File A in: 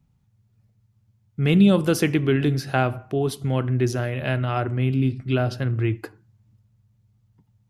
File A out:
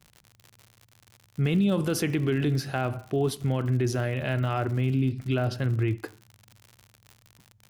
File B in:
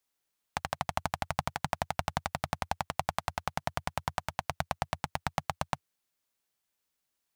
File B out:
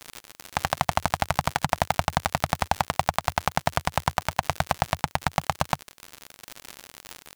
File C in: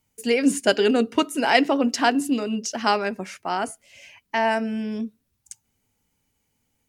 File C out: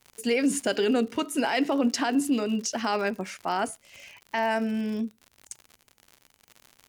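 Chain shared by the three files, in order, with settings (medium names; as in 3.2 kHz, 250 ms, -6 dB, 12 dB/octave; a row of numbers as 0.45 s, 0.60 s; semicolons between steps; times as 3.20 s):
peak limiter -15 dBFS; crackle 96 per s -35 dBFS; normalise loudness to -27 LUFS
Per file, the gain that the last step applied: -1.5 dB, +12.5 dB, -1.0 dB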